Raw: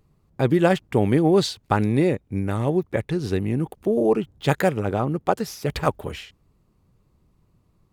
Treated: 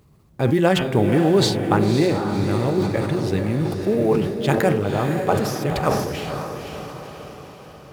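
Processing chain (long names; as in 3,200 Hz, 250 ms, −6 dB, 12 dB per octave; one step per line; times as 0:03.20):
mu-law and A-law mismatch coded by mu
high-pass filter 53 Hz
hum removal 89.07 Hz, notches 37
on a send: feedback delay with all-pass diffusion 524 ms, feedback 54%, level −5.5 dB
on the sum: level that may fall only so fast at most 54 dB per second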